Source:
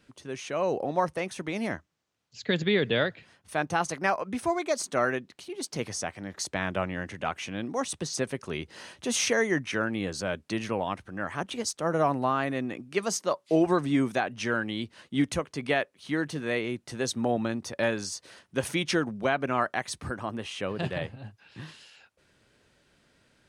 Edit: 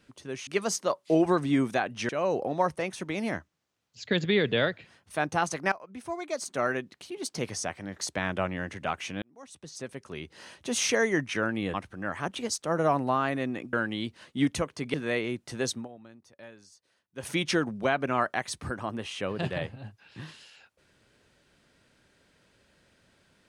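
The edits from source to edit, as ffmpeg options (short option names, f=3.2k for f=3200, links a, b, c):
-filter_complex "[0:a]asplit=10[a][b][c][d][e][f][g][h][i][j];[a]atrim=end=0.472[k];[b]atrim=start=12.878:end=14.502[l];[c]atrim=start=0.468:end=4.1,asetpts=PTS-STARTPTS,afade=t=out:st=3.628:d=0.004:c=hsin:silence=0.133352[m];[d]atrim=start=4.1:end=7.6,asetpts=PTS-STARTPTS,afade=t=in:d=1.23:silence=0.133352,afade=t=out:st=3.496:d=0.004:c=hsin[n];[e]atrim=start=7.6:end=10.122,asetpts=PTS-STARTPTS,afade=t=in:d=1.73[o];[f]atrim=start=10.888:end=12.882[p];[g]atrim=start=14.498:end=15.712[q];[h]atrim=start=16.338:end=17.28,asetpts=PTS-STARTPTS,afade=t=out:st=0.752:d=0.19:silence=0.0891251[r];[i]atrim=start=17.28:end=18.55,asetpts=PTS-STARTPTS,volume=-21dB[s];[j]atrim=start=18.55,asetpts=PTS-STARTPTS,afade=t=in:d=0.19:silence=0.0891251[t];[k][l]acrossfade=d=0.004:c1=hsin:c2=hsin[u];[m][n][o]concat=n=3:v=0:a=1[v];[u][v]acrossfade=d=0.004:c1=hsin:c2=hsin[w];[w][p]acrossfade=d=0.004:c1=hsin:c2=hsin[x];[x][q]acrossfade=d=0.004:c1=hsin:c2=hsin[y];[r][s][t]concat=n=3:v=0:a=1[z];[y][z]acrossfade=d=0.004:c1=hsin:c2=hsin"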